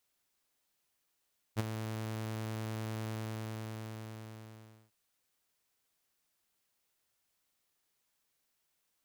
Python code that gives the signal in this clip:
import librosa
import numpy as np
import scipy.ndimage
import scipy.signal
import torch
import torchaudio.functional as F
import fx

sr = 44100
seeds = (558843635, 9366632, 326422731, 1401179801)

y = fx.adsr_tone(sr, wave='saw', hz=110.0, attack_ms=35.0, decay_ms=21.0, sustain_db=-9.5, held_s=1.52, release_ms=1830.0, level_db=-24.5)